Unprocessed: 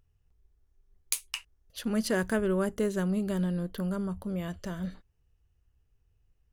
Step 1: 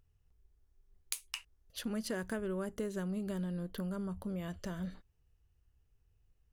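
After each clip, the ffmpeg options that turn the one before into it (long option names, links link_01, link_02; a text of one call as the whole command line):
ffmpeg -i in.wav -af "acompressor=threshold=-34dB:ratio=3,volume=-2dB" out.wav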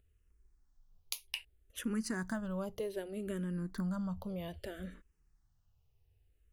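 ffmpeg -i in.wav -filter_complex "[0:a]asplit=2[link_01][link_02];[link_02]afreqshift=-0.63[link_03];[link_01][link_03]amix=inputs=2:normalize=1,volume=3dB" out.wav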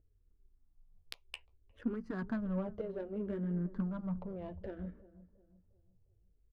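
ffmpeg -i in.wav -filter_complex "[0:a]flanger=delay=6.2:depth=9.2:regen=-31:speed=0.48:shape=triangular,asplit=2[link_01][link_02];[link_02]adelay=355,lowpass=frequency=1500:poles=1,volume=-16.5dB,asplit=2[link_03][link_04];[link_04]adelay=355,lowpass=frequency=1500:poles=1,volume=0.41,asplit=2[link_05][link_06];[link_06]adelay=355,lowpass=frequency=1500:poles=1,volume=0.41,asplit=2[link_07][link_08];[link_08]adelay=355,lowpass=frequency=1500:poles=1,volume=0.41[link_09];[link_01][link_03][link_05][link_07][link_09]amix=inputs=5:normalize=0,adynamicsmooth=sensitivity=4:basefreq=760,volume=5dB" out.wav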